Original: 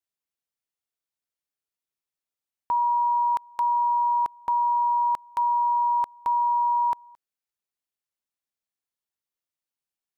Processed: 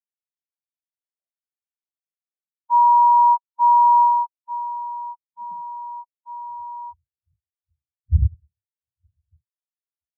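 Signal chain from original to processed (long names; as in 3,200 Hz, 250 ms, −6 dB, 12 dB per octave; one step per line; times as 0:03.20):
wind on the microphone 130 Hz −29 dBFS
high-pass filter sweep 700 Hz → 74 Hz, 0:04.02–0:06.68
every bin expanded away from the loudest bin 4 to 1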